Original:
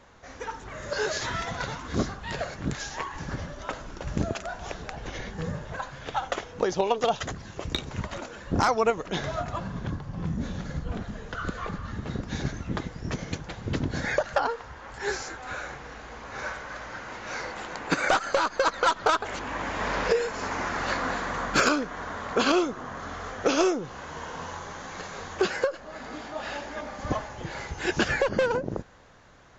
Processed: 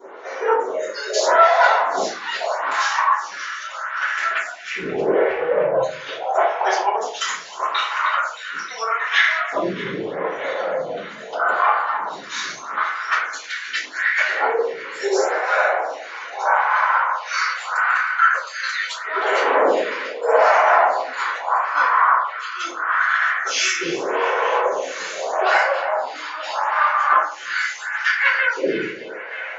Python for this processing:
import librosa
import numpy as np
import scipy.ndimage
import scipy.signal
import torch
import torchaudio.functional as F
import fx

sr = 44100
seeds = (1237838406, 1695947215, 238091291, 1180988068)

y = fx.riaa(x, sr, side='playback', at=(4.46, 5.73))
y = fx.filter_lfo_highpass(y, sr, shape='saw_up', hz=0.21, low_hz=380.0, high_hz=2100.0, q=3.9)
y = fx.low_shelf(y, sr, hz=190.0, db=-7.0)
y = fx.over_compress(y, sr, threshold_db=-27.0, ratio=-0.5)
y = fx.spec_gate(y, sr, threshold_db=-30, keep='strong')
y = fx.vibrato(y, sr, rate_hz=11.0, depth_cents=14.0)
y = fx.echo_banded(y, sr, ms=312, feedback_pct=79, hz=2200.0, wet_db=-10.5)
y = fx.room_shoebox(y, sr, seeds[0], volume_m3=51.0, walls='mixed', distance_m=3.1)
y = fx.stagger_phaser(y, sr, hz=0.79)
y = y * librosa.db_to_amplitude(-1.0)